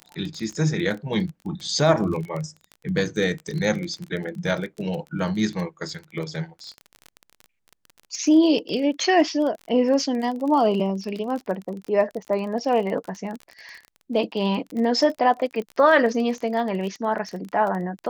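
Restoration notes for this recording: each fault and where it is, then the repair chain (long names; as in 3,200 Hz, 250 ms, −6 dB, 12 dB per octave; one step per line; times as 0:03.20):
surface crackle 26 per second −29 dBFS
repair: click removal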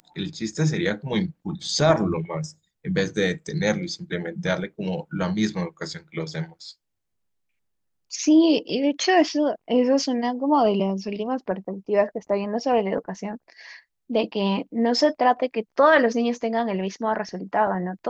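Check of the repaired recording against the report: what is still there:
none of them is left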